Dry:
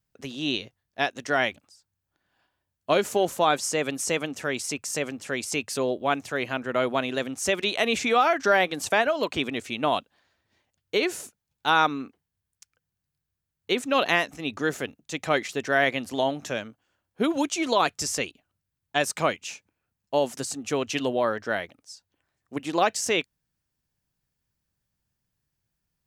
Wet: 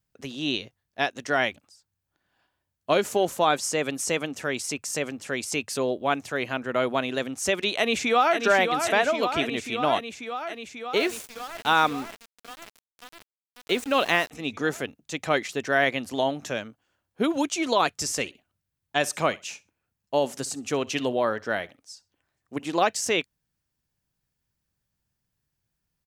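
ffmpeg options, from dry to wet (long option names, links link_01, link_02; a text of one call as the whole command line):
ffmpeg -i in.wav -filter_complex "[0:a]asplit=2[link_01][link_02];[link_02]afade=type=in:start_time=7.76:duration=0.01,afade=type=out:start_time=8.39:duration=0.01,aecho=0:1:540|1080|1620|2160|2700|3240|3780|4320|4860|5400|5940|6480:0.473151|0.378521|0.302817|0.242253|0.193803|0.155042|0.124034|0.099227|0.0793816|0.0635053|0.0508042|0.0406434[link_03];[link_01][link_03]amix=inputs=2:normalize=0,asettb=1/sr,asplit=3[link_04][link_05][link_06];[link_04]atrim=end=10.974[link_07];[link_05]atrim=start=10.97:end=14.31,asetpts=PTS-STARTPTS,afade=type=in:duration=0.004:curve=qsin,afade=type=out:start_time=3.336:duration=0.004:curve=qsin,aeval=exprs='val(0)*gte(abs(val(0)),0.0168)':channel_layout=same[link_08];[link_06]atrim=start=14.306[link_09];[link_07][link_08]acrossfade=duration=0.004:curve1=hsin:curve2=qsin[link_10];[link_10][link_09]acrossfade=duration=0.004:curve1=qsin:curve2=hsin,asettb=1/sr,asplit=3[link_11][link_12][link_13];[link_11]atrim=end=17.964[link_14];[link_12]atrim=start=17.96:end=22.81,asetpts=PTS-STARTPTS,afade=type=in:duration=0.004:curve=qsin,afade=type=out:start_time=4.846:duration=0.004:curve=qsin,aecho=1:1:63|126:0.0794|0.0167,atrim=end_sample=213885[link_15];[link_13]atrim=start=22.806[link_16];[link_14][link_15]acrossfade=duration=0.004:curve1=hsin:curve2=qsin[link_17];[link_17][link_16]acrossfade=duration=0.004:curve1=qsin:curve2=hsin" out.wav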